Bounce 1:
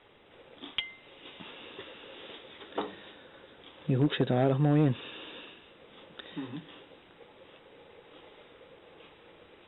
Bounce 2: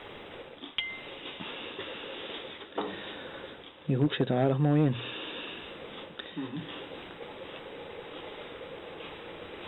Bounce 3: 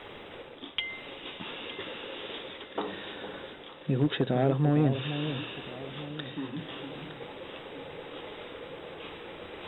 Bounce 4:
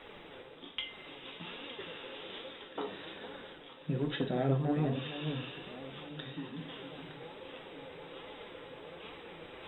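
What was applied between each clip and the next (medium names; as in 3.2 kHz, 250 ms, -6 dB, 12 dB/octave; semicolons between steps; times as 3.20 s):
hum notches 60/120 Hz; reverse; upward compressor, threshold -31 dBFS; reverse
echo whose repeats swap between lows and highs 456 ms, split 930 Hz, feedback 63%, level -9 dB
reverberation RT60 0.40 s, pre-delay 5 ms, DRR 4.5 dB; flange 1.2 Hz, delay 3.4 ms, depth 4.7 ms, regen +58%; trim -2.5 dB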